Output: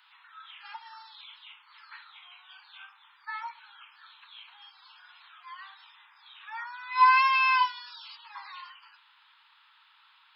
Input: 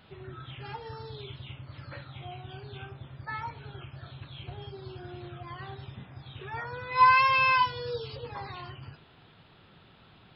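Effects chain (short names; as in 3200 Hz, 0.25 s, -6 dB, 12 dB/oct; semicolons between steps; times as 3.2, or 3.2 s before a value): steep high-pass 870 Hz 96 dB/oct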